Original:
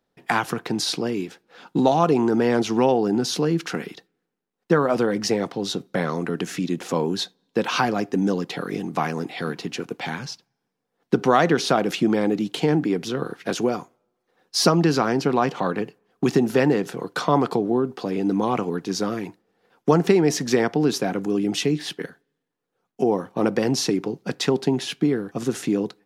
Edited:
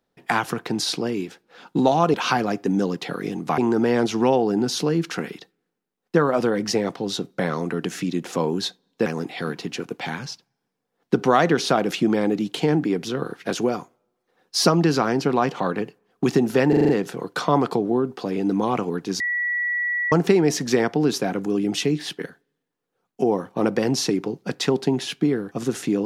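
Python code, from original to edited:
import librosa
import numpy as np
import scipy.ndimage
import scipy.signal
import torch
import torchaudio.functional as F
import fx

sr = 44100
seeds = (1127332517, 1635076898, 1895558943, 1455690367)

y = fx.edit(x, sr, fx.move(start_s=7.62, length_s=1.44, to_s=2.14),
    fx.stutter(start_s=16.69, slice_s=0.04, count=6),
    fx.bleep(start_s=19.0, length_s=0.92, hz=1940.0, db=-21.0), tone=tone)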